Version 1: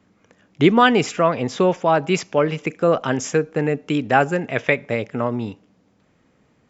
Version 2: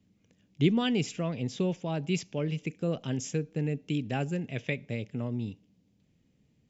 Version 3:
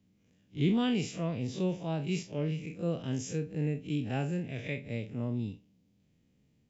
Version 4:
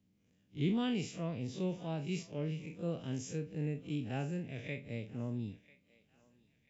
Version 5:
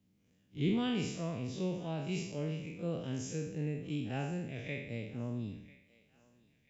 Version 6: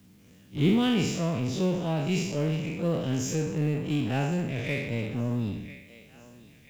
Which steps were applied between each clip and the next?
EQ curve 160 Hz 0 dB, 1300 Hz -21 dB, 2800 Hz -5 dB; gain -4.5 dB
time blur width 84 ms
thinning echo 0.993 s, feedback 39%, high-pass 890 Hz, level -19 dB; gain -5 dB
spectral trails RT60 0.76 s
G.711 law mismatch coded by mu; gain +7.5 dB

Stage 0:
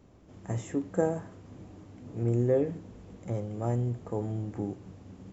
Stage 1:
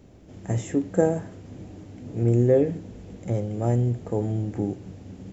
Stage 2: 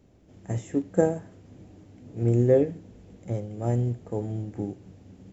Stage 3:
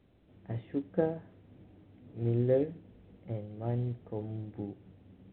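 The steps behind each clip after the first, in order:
bell 1100 Hz -8 dB 0.65 oct; gain +7 dB
upward expander 1.5:1, over -31 dBFS
gain -7.5 dB; µ-law 64 kbps 8000 Hz

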